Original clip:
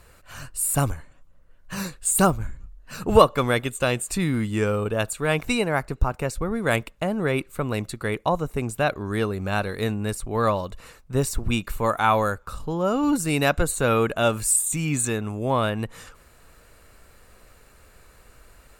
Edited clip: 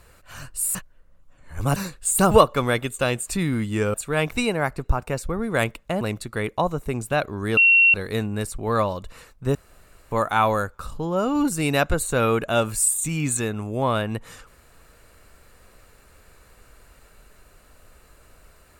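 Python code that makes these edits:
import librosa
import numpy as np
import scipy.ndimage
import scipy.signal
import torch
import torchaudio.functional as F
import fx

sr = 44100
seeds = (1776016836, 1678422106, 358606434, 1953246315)

y = fx.edit(x, sr, fx.reverse_span(start_s=0.75, length_s=1.01),
    fx.cut(start_s=2.31, length_s=0.81),
    fx.cut(start_s=4.75, length_s=0.31),
    fx.cut(start_s=7.13, length_s=0.56),
    fx.bleep(start_s=9.25, length_s=0.37, hz=2730.0, db=-11.5),
    fx.room_tone_fill(start_s=11.23, length_s=0.56), tone=tone)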